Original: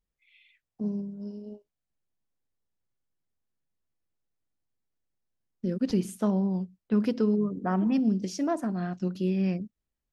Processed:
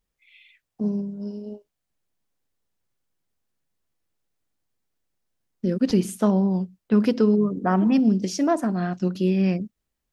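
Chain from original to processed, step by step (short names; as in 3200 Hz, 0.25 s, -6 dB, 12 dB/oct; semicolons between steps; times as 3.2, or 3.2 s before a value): low shelf 210 Hz -3.5 dB; gain +7.5 dB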